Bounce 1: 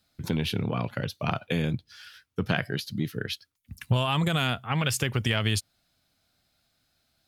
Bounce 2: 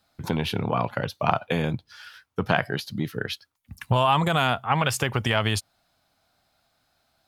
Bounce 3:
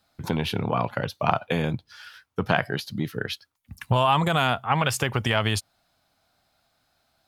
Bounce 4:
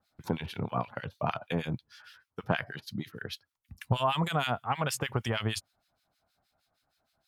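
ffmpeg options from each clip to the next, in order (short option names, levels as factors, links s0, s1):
-af "equalizer=f=880:w=0.95:g=11"
-af anull
-filter_complex "[0:a]acrossover=split=1500[s0][s1];[s0]aeval=exprs='val(0)*(1-1/2+1/2*cos(2*PI*6.4*n/s))':c=same[s2];[s1]aeval=exprs='val(0)*(1-1/2-1/2*cos(2*PI*6.4*n/s))':c=same[s3];[s2][s3]amix=inputs=2:normalize=0,volume=0.708"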